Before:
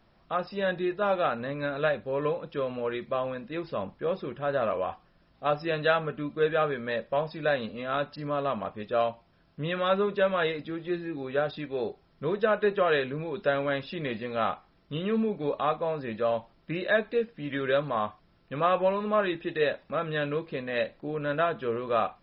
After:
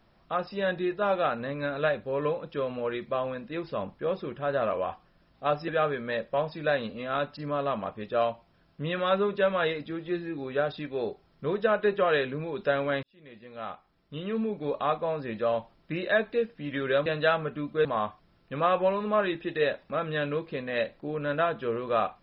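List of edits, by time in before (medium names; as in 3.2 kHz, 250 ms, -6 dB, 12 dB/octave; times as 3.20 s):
5.68–6.47 s: move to 17.85 s
13.82–15.71 s: fade in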